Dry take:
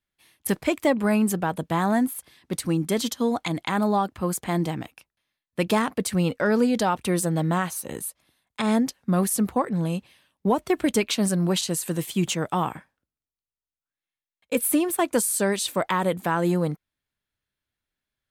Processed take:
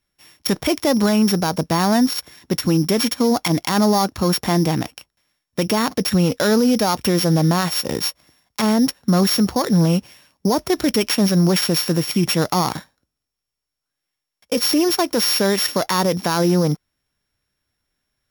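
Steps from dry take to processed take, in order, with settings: sample sorter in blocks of 8 samples; maximiser +19 dB; gain -8.5 dB

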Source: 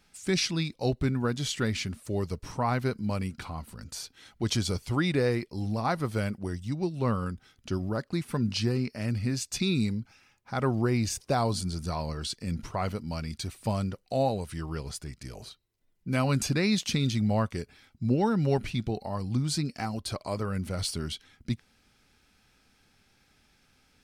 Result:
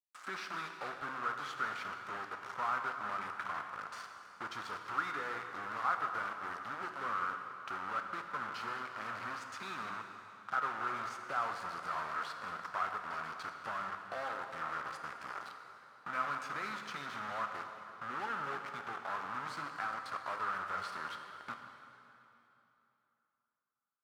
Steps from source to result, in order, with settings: compressor 2.5:1, threshold -44 dBFS, peak gain reduction 16 dB; bit-crush 7-bit; band-pass 1300 Hz, Q 5.1; reverb RT60 3.1 s, pre-delay 7 ms, DRR 4.5 dB; gain +15.5 dB

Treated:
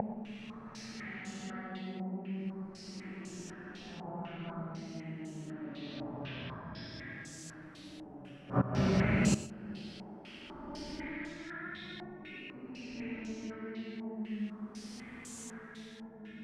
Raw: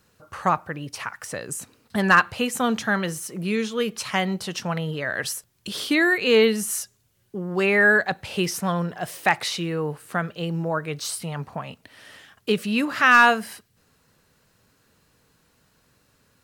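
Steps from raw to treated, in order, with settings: fixed phaser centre 720 Hz, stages 8; compressor 16:1, threshold -33 dBFS, peak gain reduction 20.5 dB; added harmonics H 3 -31 dB, 4 -8 dB, 7 -10 dB, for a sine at -18 dBFS; on a send: echo with dull and thin repeats by turns 0.412 s, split 980 Hz, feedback 74%, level -8.5 dB; on the sum: Paulstretch 5.4×, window 0.25 s, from 3.89; flipped gate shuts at -35 dBFS, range -24 dB; bell 160 Hz +14 dB 2.8 oct; non-linear reverb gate 0.14 s rising, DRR 11.5 dB; stepped low-pass 4 Hz 850–7000 Hz; gain +9 dB

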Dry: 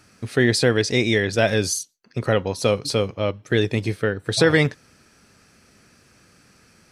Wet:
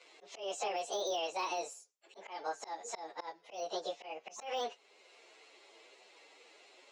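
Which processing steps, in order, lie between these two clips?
pitch shift by moving bins +8.5 st; elliptic band-pass 440–6100 Hz, stop band 60 dB; de-esser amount 75%; limiter -20 dBFS, peak gain reduction 10.5 dB; compressor 1.5:1, threshold -55 dBFS, peak gain reduction 11 dB; auto swell 0.16 s; gain +3 dB

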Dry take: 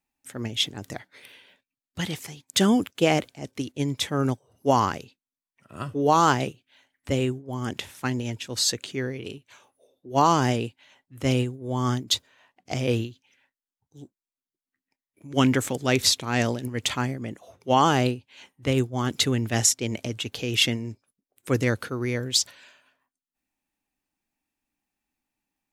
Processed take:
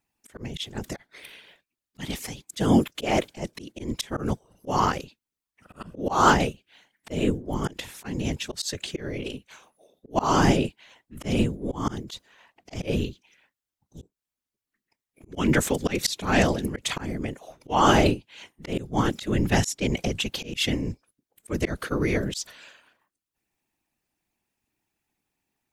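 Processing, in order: whisperiser; auto swell 0.209 s; gain +3.5 dB

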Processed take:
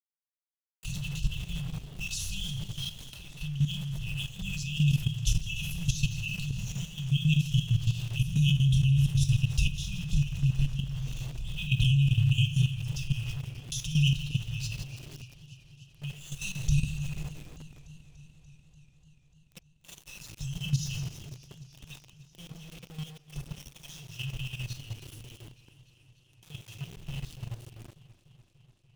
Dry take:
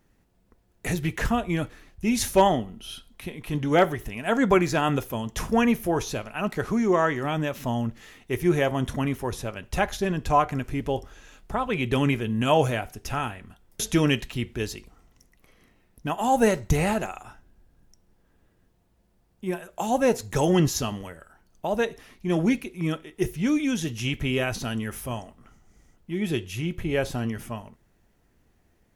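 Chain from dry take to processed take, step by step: Doppler pass-by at 8.64, 7 m/s, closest 9.2 m; LPF 7100 Hz 12 dB/oct; notches 60/120/180/240/300 Hz; split-band echo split 570 Hz, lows 0.256 s, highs 0.164 s, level -12.5 dB; shoebox room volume 1000 m³, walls furnished, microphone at 2.2 m; dynamic EQ 4400 Hz, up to -5 dB, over -51 dBFS, Q 2.4; AGC gain up to 14 dB; brick-wall FIR band-stop 170–2500 Hz; sample gate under -41 dBFS; level quantiser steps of 12 dB; warbling echo 0.293 s, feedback 75%, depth 79 cents, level -18 dB; gain +2 dB

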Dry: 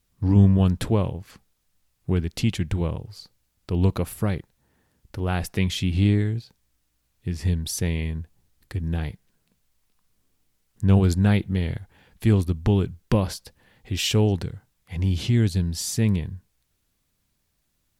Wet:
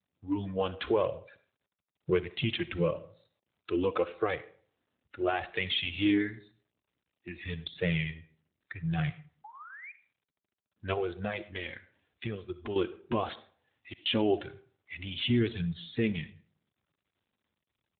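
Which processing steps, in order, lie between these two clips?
spectral noise reduction 20 dB; 10.93–12.76 compressor 5:1, threshold -35 dBFS, peak gain reduction 14 dB; limiter -20.5 dBFS, peak gain reduction 10 dB; AGC gain up to 7 dB; flange 0.89 Hz, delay 1.4 ms, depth 2.7 ms, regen 0%; 13.35–14.06 flipped gate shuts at -27 dBFS, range -32 dB; vibrato 3.2 Hz 26 cents; 9.44–9.92 painted sound rise 810–2500 Hz -44 dBFS; reverb RT60 0.50 s, pre-delay 20 ms, DRR 14 dB; AMR-NB 12.2 kbps 8000 Hz

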